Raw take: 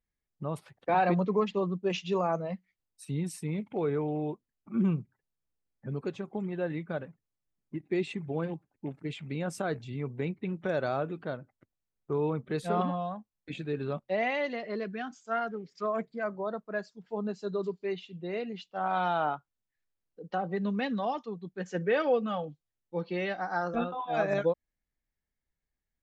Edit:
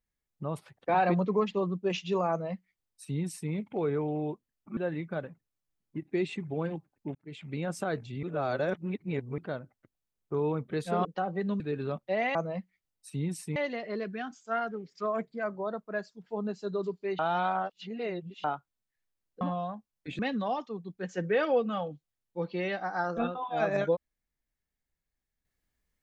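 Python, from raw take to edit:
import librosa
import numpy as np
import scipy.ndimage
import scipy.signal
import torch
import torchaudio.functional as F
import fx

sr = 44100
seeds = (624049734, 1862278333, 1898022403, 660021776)

y = fx.edit(x, sr, fx.duplicate(start_s=2.3, length_s=1.21, to_s=14.36),
    fx.cut(start_s=4.77, length_s=1.78),
    fx.fade_in_span(start_s=8.93, length_s=0.38),
    fx.reverse_span(start_s=10.01, length_s=1.15),
    fx.swap(start_s=12.83, length_s=0.78, other_s=20.21, other_length_s=0.55),
    fx.reverse_span(start_s=17.99, length_s=1.25), tone=tone)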